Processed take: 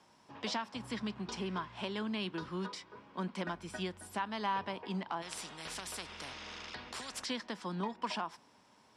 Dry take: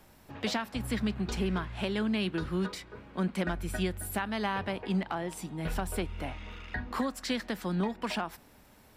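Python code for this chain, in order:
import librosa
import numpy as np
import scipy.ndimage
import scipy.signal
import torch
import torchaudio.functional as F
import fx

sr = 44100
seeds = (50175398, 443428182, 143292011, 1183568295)

y = fx.cabinet(x, sr, low_hz=150.0, low_slope=12, high_hz=9100.0, hz=(1000.0, 3200.0, 5300.0), db=(10, 4, 8))
y = fx.spectral_comp(y, sr, ratio=4.0, at=(5.21, 7.24), fade=0.02)
y = y * librosa.db_to_amplitude(-7.0)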